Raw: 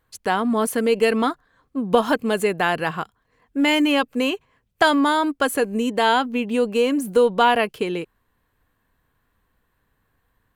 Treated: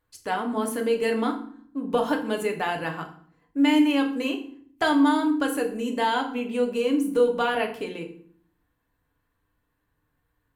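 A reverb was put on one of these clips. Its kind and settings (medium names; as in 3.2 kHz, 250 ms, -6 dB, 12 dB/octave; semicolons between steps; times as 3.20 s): FDN reverb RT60 0.53 s, low-frequency decay 1.6×, high-frequency decay 0.8×, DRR 2 dB; trim -8.5 dB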